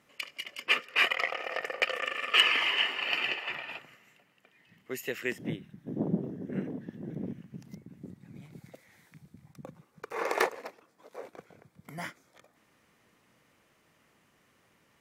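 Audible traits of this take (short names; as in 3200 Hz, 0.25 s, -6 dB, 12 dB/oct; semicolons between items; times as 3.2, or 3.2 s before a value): noise floor -68 dBFS; spectral tilt -3.5 dB/oct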